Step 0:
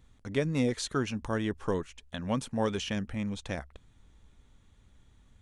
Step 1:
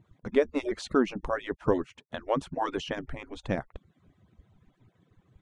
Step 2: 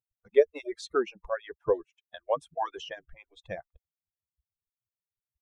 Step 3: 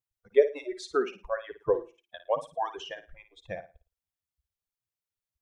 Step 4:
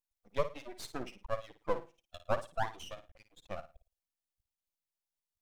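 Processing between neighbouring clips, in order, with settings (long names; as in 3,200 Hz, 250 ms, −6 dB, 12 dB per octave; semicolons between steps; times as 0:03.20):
harmonic-percussive split with one part muted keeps percussive; low-pass filter 1,100 Hz 6 dB per octave; level +8 dB
spectral dynamics exaggerated over time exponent 2; low shelf with overshoot 340 Hz −8.5 dB, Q 3
flutter between parallel walls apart 9.5 metres, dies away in 0.3 s
phaser with its sweep stopped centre 410 Hz, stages 6; half-wave rectification; level +2 dB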